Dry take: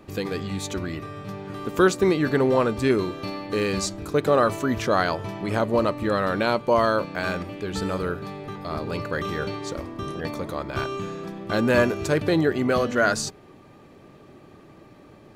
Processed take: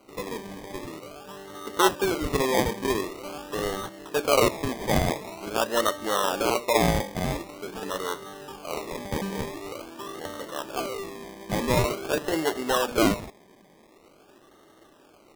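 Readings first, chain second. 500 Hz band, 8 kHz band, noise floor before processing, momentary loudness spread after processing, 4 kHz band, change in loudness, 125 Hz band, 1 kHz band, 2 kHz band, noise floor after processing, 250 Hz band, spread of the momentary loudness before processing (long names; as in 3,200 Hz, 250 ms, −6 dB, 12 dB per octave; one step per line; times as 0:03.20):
−4.0 dB, +2.5 dB, −50 dBFS, 16 LU, +2.0 dB, −2.5 dB, −4.0 dB, −1.5 dB, −4.0 dB, −56 dBFS, −5.0 dB, 12 LU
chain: high-pass filter 340 Hz 12 dB per octave
mains-hum notches 60/120/180/240/300/360/420/480/540/600 Hz
dynamic equaliser 1,400 Hz, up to +5 dB, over −35 dBFS, Q 1.1
moving average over 5 samples
sample-and-hold swept by an LFO 25×, swing 60% 0.46 Hz
level −2.5 dB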